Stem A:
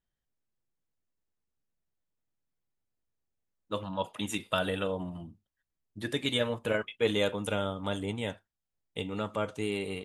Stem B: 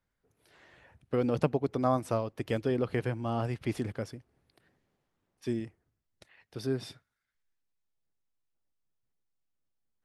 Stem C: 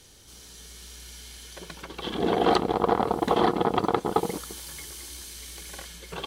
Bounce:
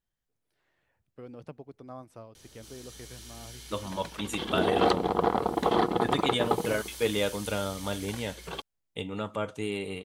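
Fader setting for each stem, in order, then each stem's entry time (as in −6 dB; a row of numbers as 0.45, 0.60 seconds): 0.0, −16.5, −2.5 decibels; 0.00, 0.05, 2.35 seconds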